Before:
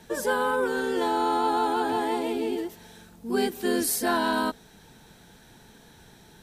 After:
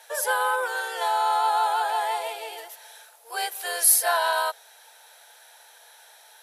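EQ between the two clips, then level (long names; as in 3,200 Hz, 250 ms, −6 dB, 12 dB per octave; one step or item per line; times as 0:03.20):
Butterworth high-pass 550 Hz 48 dB per octave
parametric band 11,000 Hz +12 dB 0.2 octaves
notch filter 1,100 Hz, Q 14
+3.5 dB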